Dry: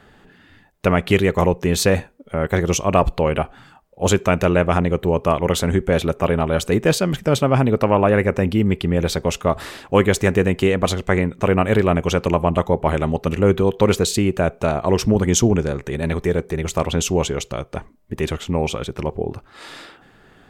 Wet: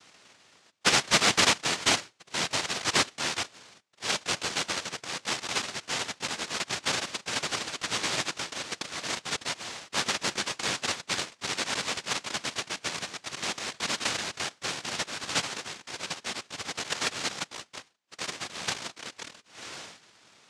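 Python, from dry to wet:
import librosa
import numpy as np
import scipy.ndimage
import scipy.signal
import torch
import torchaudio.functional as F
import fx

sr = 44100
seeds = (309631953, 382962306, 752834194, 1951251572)

y = fx.filter_sweep_bandpass(x, sr, from_hz=680.0, to_hz=2800.0, start_s=1.27, end_s=3.99, q=1.3)
y = fx.noise_vocoder(y, sr, seeds[0], bands=1)
y = fx.fold_sine(y, sr, drive_db=5, ceiling_db=-4.5)
y = fx.air_absorb(y, sr, metres=62.0)
y = y * 10.0 ** (-7.0 / 20.0)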